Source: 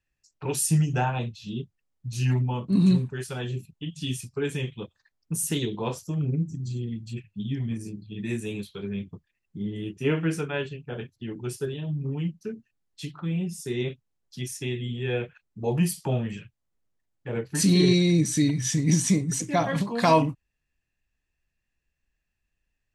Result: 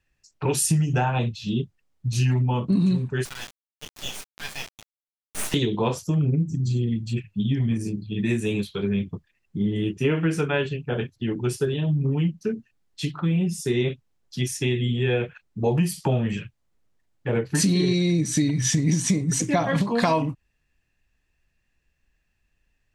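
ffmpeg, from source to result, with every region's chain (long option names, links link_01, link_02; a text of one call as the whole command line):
ffmpeg -i in.wav -filter_complex "[0:a]asettb=1/sr,asplit=3[link_01][link_02][link_03];[link_01]atrim=end=3.254[link_04];[link_02]atrim=start=3.25:end=5.54,asetpts=PTS-STARTPTS,afade=type=in:duration=0.004:curve=qsin,afade=type=out:start_time=2.286:duration=0.004:curve=qsin,highpass=frequency=1400:width=0.5412,highpass=frequency=1400:width=1.3066,equalizer=frequency=8600:width_type=o:width=0.52:gain=-3,acrusher=bits=4:dc=4:mix=0:aa=0.000001[link_05];[link_03]atrim=start=5.536[link_06];[link_04][link_05]acrossfade=duration=0.004:curve1=hsin:curve2=qsin[link_07];[link_07][link_06]acrossfade=duration=0.004:curve1=qsin:curve2=hsin,highshelf=frequency=8800:gain=-7.5,acompressor=threshold=-27dB:ratio=6,volume=8.5dB" out.wav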